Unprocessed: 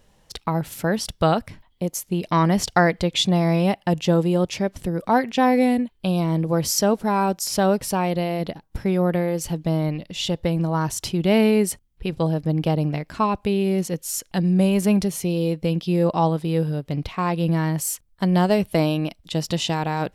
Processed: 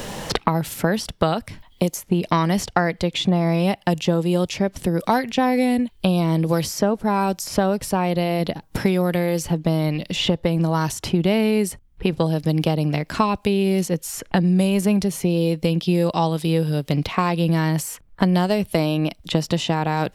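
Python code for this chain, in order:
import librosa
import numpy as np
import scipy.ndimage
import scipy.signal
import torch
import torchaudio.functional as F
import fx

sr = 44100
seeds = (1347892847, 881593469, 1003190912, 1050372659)

y = fx.band_squash(x, sr, depth_pct=100)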